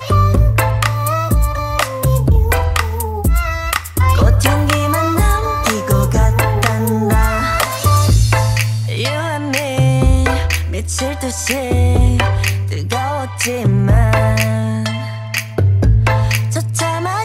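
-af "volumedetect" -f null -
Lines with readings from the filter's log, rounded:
mean_volume: -13.9 dB
max_volume: -1.6 dB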